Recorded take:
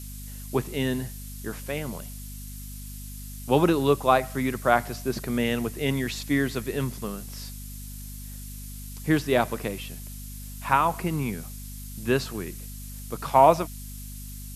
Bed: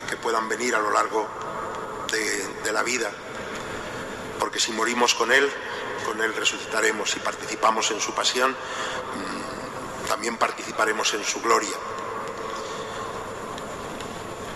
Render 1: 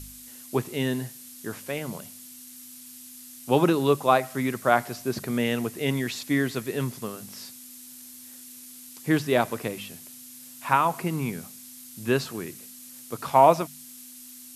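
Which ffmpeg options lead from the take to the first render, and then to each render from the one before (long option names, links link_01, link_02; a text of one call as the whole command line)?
ffmpeg -i in.wav -af "bandreject=frequency=50:width_type=h:width=4,bandreject=frequency=100:width_type=h:width=4,bandreject=frequency=150:width_type=h:width=4,bandreject=frequency=200:width_type=h:width=4" out.wav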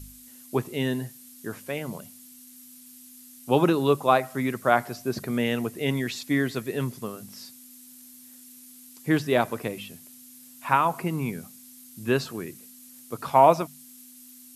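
ffmpeg -i in.wav -af "afftdn=noise_reduction=6:noise_floor=-45" out.wav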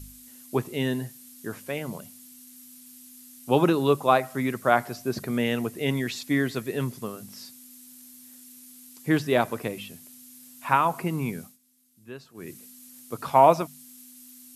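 ffmpeg -i in.wav -filter_complex "[0:a]asplit=3[link_01][link_02][link_03];[link_01]atrim=end=11.58,asetpts=PTS-STARTPTS,afade=type=out:start_time=11.41:duration=0.17:silence=0.133352[link_04];[link_02]atrim=start=11.58:end=12.34,asetpts=PTS-STARTPTS,volume=-17.5dB[link_05];[link_03]atrim=start=12.34,asetpts=PTS-STARTPTS,afade=type=in:duration=0.17:silence=0.133352[link_06];[link_04][link_05][link_06]concat=n=3:v=0:a=1" out.wav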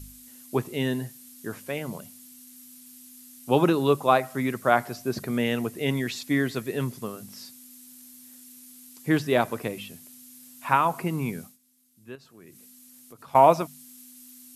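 ffmpeg -i in.wav -filter_complex "[0:a]asettb=1/sr,asplit=3[link_01][link_02][link_03];[link_01]atrim=end=12.154[link_04];[link_02]atrim=start=12.15:end=13.35,asetpts=PTS-STARTPTS,afade=type=in:duration=0.004:curve=qsin,afade=type=out:start_time=1.196:duration=0.004:curve=qsin,acompressor=threshold=-48dB:ratio=3:attack=3.2:release=140:knee=1:detection=peak[link_05];[link_03]atrim=start=13.346[link_06];[link_04][link_05]acrossfade=duration=0.004:curve1=hsin:curve2=qsin[link_07];[link_07][link_06]acrossfade=duration=0.004:curve1=qsin:curve2=hsin" out.wav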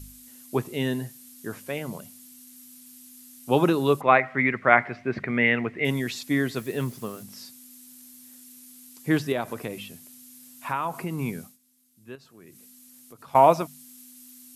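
ffmpeg -i in.wav -filter_complex "[0:a]asettb=1/sr,asplit=3[link_01][link_02][link_03];[link_01]atrim=end=4.014[link_04];[link_02]atrim=start=4.01:end=5.85,asetpts=PTS-STARTPTS,afade=type=in:duration=0.004:curve=qsin,afade=type=out:start_time=1.836:duration=0.004:curve=qsin,lowpass=frequency=2100:width_type=q:width=5.3[link_05];[link_03]atrim=start=5.846[link_06];[link_04][link_05]acrossfade=duration=0.004:curve1=hsin:curve2=qsin[link_07];[link_07][link_06]acrossfade=duration=0.004:curve1=qsin:curve2=hsin,asettb=1/sr,asplit=3[link_08][link_09][link_10];[link_08]atrim=end=6.574[link_11];[link_09]atrim=start=6.57:end=7.23,asetpts=PTS-STARTPTS,afade=type=in:duration=0.004:curve=qsin,afade=type=out:start_time=0.656:duration=0.004:curve=qsin,acrusher=bits=7:mix=0:aa=0.5[link_12];[link_10]atrim=start=7.226[link_13];[link_11][link_12]acrossfade=duration=0.004:curve1=hsin:curve2=qsin[link_14];[link_14][link_13]acrossfade=duration=0.004:curve1=qsin:curve2=hsin,asettb=1/sr,asplit=3[link_15][link_16][link_17];[link_15]atrim=end=9.324[link_18];[link_16]atrim=start=9.32:end=11.19,asetpts=PTS-STARTPTS,afade=type=in:duration=0.004:curve=qsin,afade=type=out:start_time=1.866:duration=0.004:curve=qsin,acompressor=threshold=-28dB:ratio=2:attack=3.2:release=140:knee=1:detection=peak[link_19];[link_17]atrim=start=11.186[link_20];[link_18][link_19]acrossfade=duration=0.004:curve1=hsin:curve2=qsin[link_21];[link_21][link_20]acrossfade=duration=0.004:curve1=qsin:curve2=hsin" out.wav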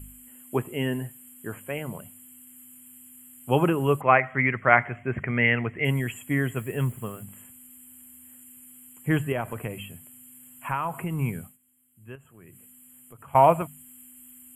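ffmpeg -i in.wav -af "asubboost=boost=5:cutoff=110,afftfilt=real='re*(1-between(b*sr/4096,3300,7000))':imag='im*(1-between(b*sr/4096,3300,7000))':win_size=4096:overlap=0.75" out.wav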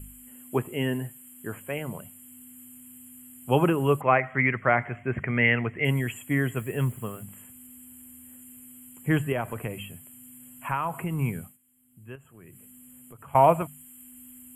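ffmpeg -i in.wav -filter_complex "[0:a]acrossover=split=640|5200[link_01][link_02][link_03];[link_01]acompressor=mode=upward:threshold=-46dB:ratio=2.5[link_04];[link_02]alimiter=limit=-12dB:level=0:latency=1:release=216[link_05];[link_04][link_05][link_03]amix=inputs=3:normalize=0" out.wav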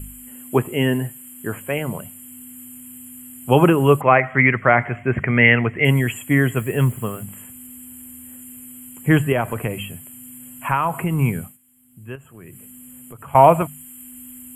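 ffmpeg -i in.wav -af "volume=8.5dB,alimiter=limit=-1dB:level=0:latency=1" out.wav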